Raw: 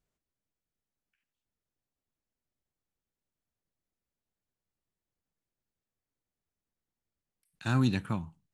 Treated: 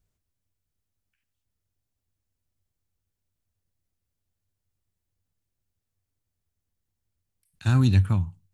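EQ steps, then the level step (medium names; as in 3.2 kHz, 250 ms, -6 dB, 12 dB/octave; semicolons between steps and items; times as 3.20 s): peaking EQ 95 Hz +14 dB 0.31 oct; bass shelf 130 Hz +12 dB; treble shelf 3.7 kHz +6 dB; 0.0 dB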